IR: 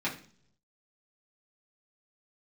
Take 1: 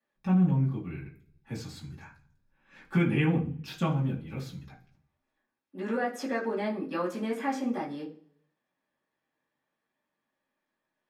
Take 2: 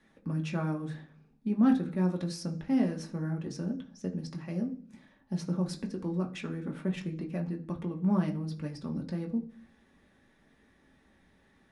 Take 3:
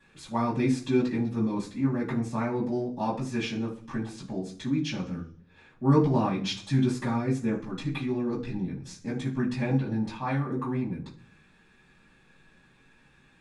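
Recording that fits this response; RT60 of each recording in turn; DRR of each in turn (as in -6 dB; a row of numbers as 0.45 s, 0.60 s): 1; 0.55 s, 0.55 s, 0.55 s; -7.5 dB, 1.0 dB, -12.5 dB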